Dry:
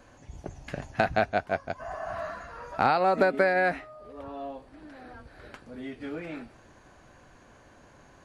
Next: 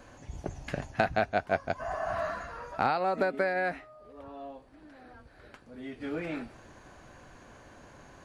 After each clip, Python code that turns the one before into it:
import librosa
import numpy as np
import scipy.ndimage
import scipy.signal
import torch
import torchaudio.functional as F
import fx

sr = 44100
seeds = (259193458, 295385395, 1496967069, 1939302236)

y = fx.rider(x, sr, range_db=4, speed_s=0.5)
y = F.gain(torch.from_numpy(y), -1.5).numpy()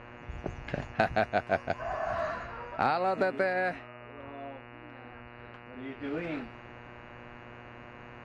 y = fx.dmg_buzz(x, sr, base_hz=120.0, harmonics=24, level_db=-49.0, tilt_db=-2, odd_only=False)
y = fx.env_lowpass(y, sr, base_hz=2300.0, full_db=-23.5)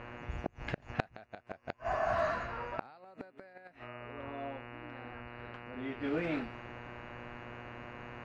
y = fx.gate_flip(x, sr, shuts_db=-21.0, range_db=-28)
y = F.gain(torch.from_numpy(y), 1.0).numpy()